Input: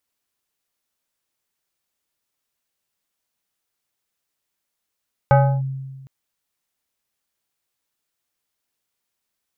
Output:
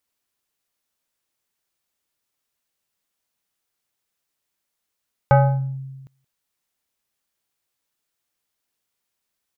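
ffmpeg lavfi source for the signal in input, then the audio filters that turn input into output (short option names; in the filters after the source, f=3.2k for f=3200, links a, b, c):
-f lavfi -i "aevalsrc='0.398*pow(10,-3*t/1.44)*sin(2*PI*134*t+1.2*clip(1-t/0.31,0,1)*sin(2*PI*5.2*134*t))':d=0.76:s=44100"
-filter_complex "[0:a]asplit=2[a][b];[b]adelay=174.9,volume=-28dB,highshelf=f=4k:g=-3.94[c];[a][c]amix=inputs=2:normalize=0"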